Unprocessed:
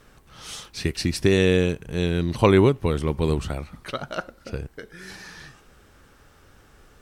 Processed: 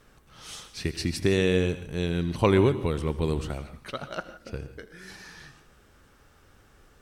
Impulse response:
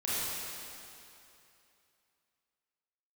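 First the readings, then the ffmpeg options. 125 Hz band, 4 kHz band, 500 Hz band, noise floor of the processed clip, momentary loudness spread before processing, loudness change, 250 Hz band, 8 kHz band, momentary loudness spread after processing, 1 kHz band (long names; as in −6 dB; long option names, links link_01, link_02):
−4.0 dB, −4.0 dB, −4.0 dB, −59 dBFS, 22 LU, −4.0 dB, −4.5 dB, −4.0 dB, 21 LU, −4.5 dB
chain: -filter_complex "[0:a]asplit=2[link_01][link_02];[1:a]atrim=start_sample=2205,atrim=end_sample=4410,adelay=81[link_03];[link_02][link_03]afir=irnorm=-1:irlink=0,volume=-15.5dB[link_04];[link_01][link_04]amix=inputs=2:normalize=0,volume=-4.5dB"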